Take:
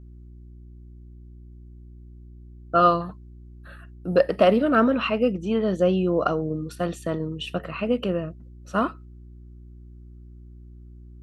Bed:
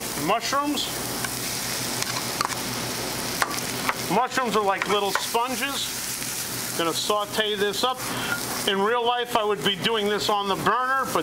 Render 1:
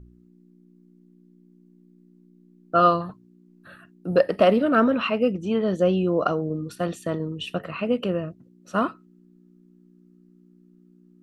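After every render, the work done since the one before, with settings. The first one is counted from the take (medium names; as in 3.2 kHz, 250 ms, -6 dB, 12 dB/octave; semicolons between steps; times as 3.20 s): de-hum 60 Hz, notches 2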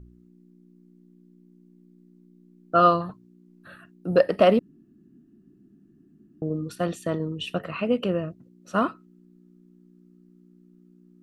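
4.59–6.42 s: room tone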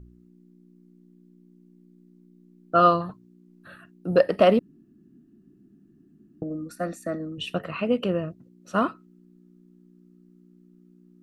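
6.43–7.38 s: static phaser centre 630 Hz, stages 8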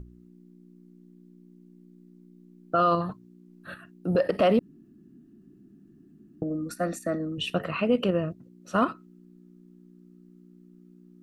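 in parallel at +1.5 dB: level held to a coarse grid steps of 23 dB; on the sum: peak limiter -13.5 dBFS, peak gain reduction 10.5 dB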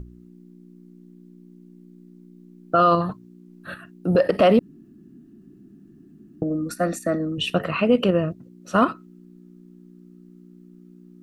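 trim +5.5 dB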